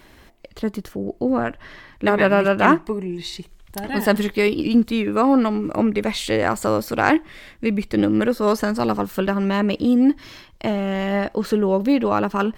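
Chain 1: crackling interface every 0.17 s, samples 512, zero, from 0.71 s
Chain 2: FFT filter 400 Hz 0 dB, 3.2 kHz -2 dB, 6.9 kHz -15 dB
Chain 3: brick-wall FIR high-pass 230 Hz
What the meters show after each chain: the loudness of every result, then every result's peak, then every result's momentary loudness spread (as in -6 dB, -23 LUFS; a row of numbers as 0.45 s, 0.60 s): -20.5 LUFS, -20.5 LUFS, -21.5 LUFS; -1.5 dBFS, -2.5 dBFS, -2.0 dBFS; 12 LU, 11 LU, 14 LU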